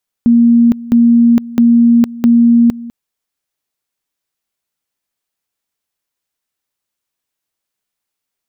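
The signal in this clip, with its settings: two-level tone 235 Hz -4.5 dBFS, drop 19 dB, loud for 0.46 s, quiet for 0.20 s, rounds 4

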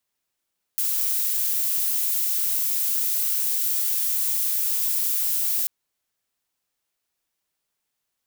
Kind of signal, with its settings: noise violet, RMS -23.5 dBFS 4.89 s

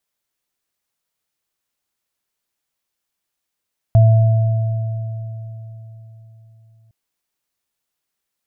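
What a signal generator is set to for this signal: sine partials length 2.96 s, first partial 112 Hz, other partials 668 Hz, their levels -13 dB, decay 4.06 s, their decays 3.35 s, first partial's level -6 dB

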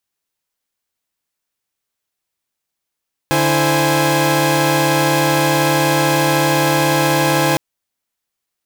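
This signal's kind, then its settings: chord D3/E4/C5/G#5 saw, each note -16 dBFS 4.26 s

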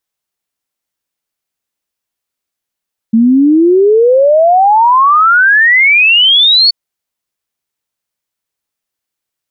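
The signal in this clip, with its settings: log sweep 220 Hz -> 4.5 kHz 3.58 s -4 dBFS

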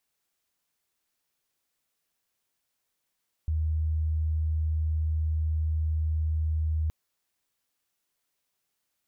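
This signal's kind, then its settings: tone sine 78.4 Hz -24 dBFS 3.42 s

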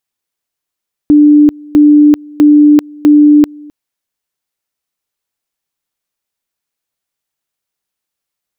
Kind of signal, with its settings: two-level tone 296 Hz -1.5 dBFS, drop 26.5 dB, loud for 0.39 s, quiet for 0.26 s, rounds 4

